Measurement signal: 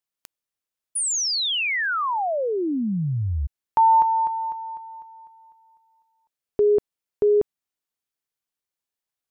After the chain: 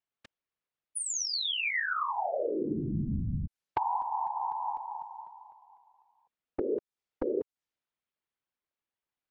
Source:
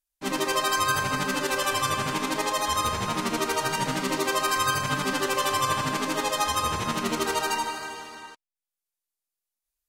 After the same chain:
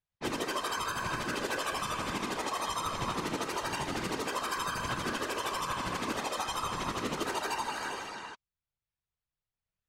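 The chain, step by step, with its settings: compressor 10:1, threshold -30 dBFS; high shelf 10000 Hz -5.5 dB; low-pass opened by the level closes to 3000 Hz, open at -35 dBFS; whisperiser

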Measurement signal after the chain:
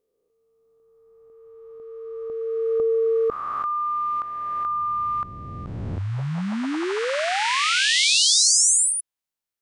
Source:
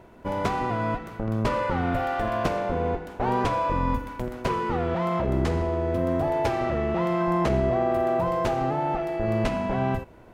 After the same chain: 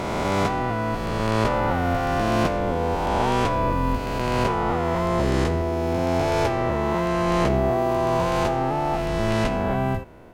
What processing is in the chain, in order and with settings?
spectral swells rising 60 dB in 2.96 s

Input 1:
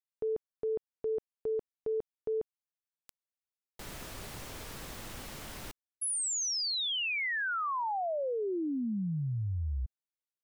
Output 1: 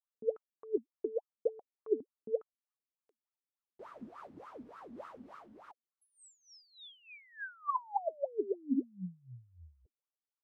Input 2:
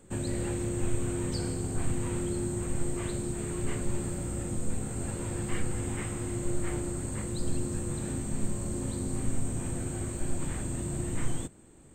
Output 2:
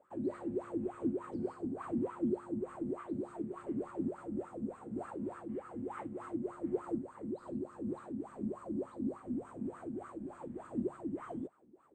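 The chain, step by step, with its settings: wah 3.4 Hz 220–1300 Hz, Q 11; noise-modulated level, depth 65%; gain +13.5 dB

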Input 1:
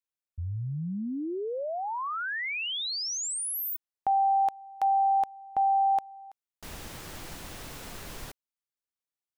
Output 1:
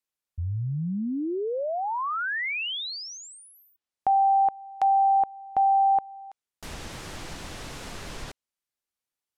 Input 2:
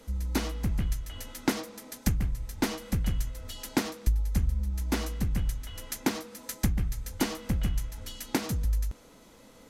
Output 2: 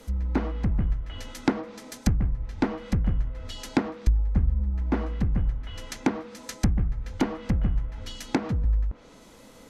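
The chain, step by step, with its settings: treble ducked by the level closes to 1300 Hz, closed at -26.5 dBFS; gain +4 dB

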